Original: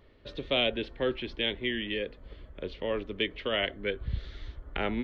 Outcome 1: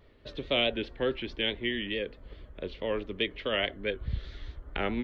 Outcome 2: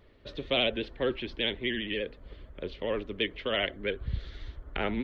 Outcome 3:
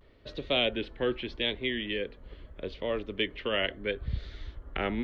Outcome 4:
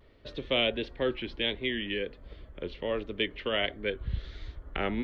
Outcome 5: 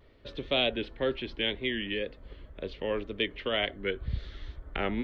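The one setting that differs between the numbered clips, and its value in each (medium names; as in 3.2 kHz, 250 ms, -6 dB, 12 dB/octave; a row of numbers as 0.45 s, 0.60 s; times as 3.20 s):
vibrato, rate: 4.7 Hz, 15 Hz, 0.79 Hz, 1.4 Hz, 2 Hz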